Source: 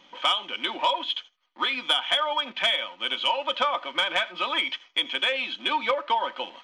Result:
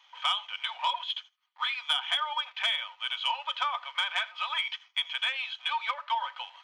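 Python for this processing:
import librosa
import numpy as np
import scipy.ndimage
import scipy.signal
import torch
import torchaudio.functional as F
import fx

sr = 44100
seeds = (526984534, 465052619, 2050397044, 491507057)

y = scipy.signal.sosfilt(scipy.signal.butter(6, 780.0, 'highpass', fs=sr, output='sos'), x)
y = F.gain(torch.from_numpy(y), -4.5).numpy()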